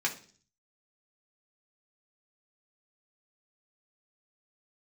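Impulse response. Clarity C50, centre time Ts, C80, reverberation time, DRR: 13.0 dB, 11 ms, 18.0 dB, 0.45 s, -1.5 dB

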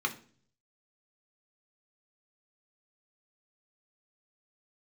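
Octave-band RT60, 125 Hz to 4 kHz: 0.90, 0.65, 0.55, 0.40, 0.40, 0.45 s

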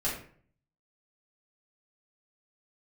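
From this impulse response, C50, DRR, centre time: 4.5 dB, -7.5 dB, 36 ms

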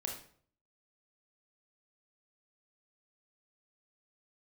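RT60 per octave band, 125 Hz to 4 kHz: 0.70, 0.60, 0.55, 0.50, 0.45, 0.40 s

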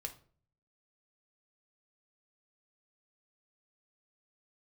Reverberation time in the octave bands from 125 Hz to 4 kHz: 0.85, 0.60, 0.50, 0.40, 0.35, 0.30 s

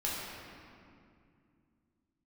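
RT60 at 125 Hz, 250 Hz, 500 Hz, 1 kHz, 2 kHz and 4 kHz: 3.7, 3.4, 2.5, 2.2, 2.0, 1.5 s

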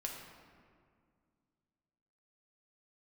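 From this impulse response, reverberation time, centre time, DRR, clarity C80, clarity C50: 2.1 s, 63 ms, -1.0 dB, 4.5 dB, 3.0 dB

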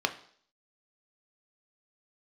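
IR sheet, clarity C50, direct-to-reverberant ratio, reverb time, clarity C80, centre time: 14.0 dB, 6.0 dB, 0.55 s, 17.5 dB, 7 ms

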